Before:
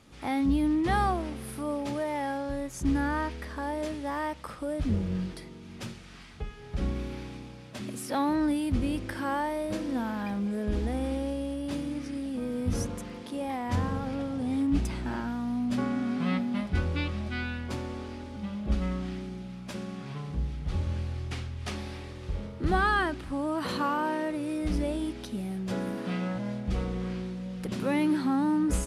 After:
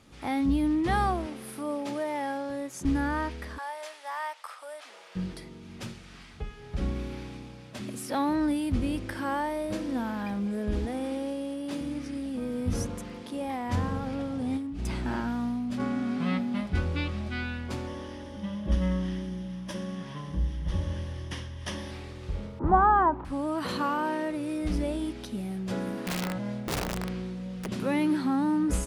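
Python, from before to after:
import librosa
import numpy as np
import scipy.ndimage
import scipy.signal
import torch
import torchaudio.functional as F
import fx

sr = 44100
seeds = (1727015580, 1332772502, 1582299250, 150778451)

y = fx.highpass(x, sr, hz=190.0, slope=12, at=(1.26, 2.85))
y = fx.highpass(y, sr, hz=720.0, slope=24, at=(3.57, 5.15), fade=0.02)
y = fx.highpass(y, sr, hz=190.0, slope=12, at=(10.85, 11.81))
y = fx.over_compress(y, sr, threshold_db=-31.0, ratio=-1.0, at=(14.57, 15.8))
y = fx.ripple_eq(y, sr, per_octave=1.2, db=10, at=(17.87, 21.91))
y = fx.lowpass_res(y, sr, hz=960.0, q=6.3, at=(22.59, 23.25))
y = fx.overflow_wrap(y, sr, gain_db=25.0, at=(26.03, 27.65), fade=0.02)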